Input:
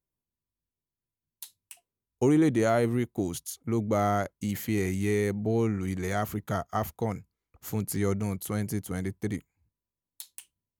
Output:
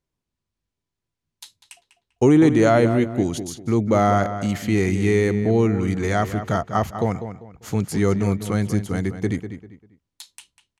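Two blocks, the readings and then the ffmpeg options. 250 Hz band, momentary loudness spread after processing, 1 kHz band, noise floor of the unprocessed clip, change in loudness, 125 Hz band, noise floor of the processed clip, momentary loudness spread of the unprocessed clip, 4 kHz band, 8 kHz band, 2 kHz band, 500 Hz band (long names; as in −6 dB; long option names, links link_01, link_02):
+8.5 dB, 11 LU, +8.5 dB, below −85 dBFS, +8.5 dB, +8.5 dB, −84 dBFS, 20 LU, +8.0 dB, +3.5 dB, +8.5 dB, +8.5 dB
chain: -filter_complex "[0:a]lowpass=6800,asplit=2[link_01][link_02];[link_02]adelay=197,lowpass=frequency=3400:poles=1,volume=-10dB,asplit=2[link_03][link_04];[link_04]adelay=197,lowpass=frequency=3400:poles=1,volume=0.3,asplit=2[link_05][link_06];[link_06]adelay=197,lowpass=frequency=3400:poles=1,volume=0.3[link_07];[link_03][link_05][link_07]amix=inputs=3:normalize=0[link_08];[link_01][link_08]amix=inputs=2:normalize=0,volume=8dB"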